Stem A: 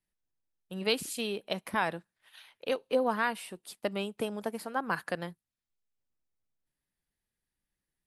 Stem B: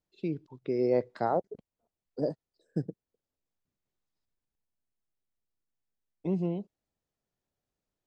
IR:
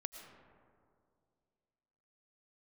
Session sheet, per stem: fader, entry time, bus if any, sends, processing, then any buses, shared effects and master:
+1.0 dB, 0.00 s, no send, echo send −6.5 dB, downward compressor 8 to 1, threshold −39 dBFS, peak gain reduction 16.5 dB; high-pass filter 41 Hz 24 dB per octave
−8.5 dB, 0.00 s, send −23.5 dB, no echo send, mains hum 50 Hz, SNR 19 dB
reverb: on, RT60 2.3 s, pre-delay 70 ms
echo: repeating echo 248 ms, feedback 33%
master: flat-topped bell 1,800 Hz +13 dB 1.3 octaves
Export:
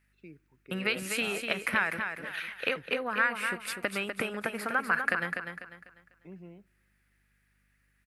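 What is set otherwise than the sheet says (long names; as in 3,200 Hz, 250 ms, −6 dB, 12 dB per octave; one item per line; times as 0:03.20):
stem A +1.0 dB → +7.5 dB
stem B −8.5 dB → −18.0 dB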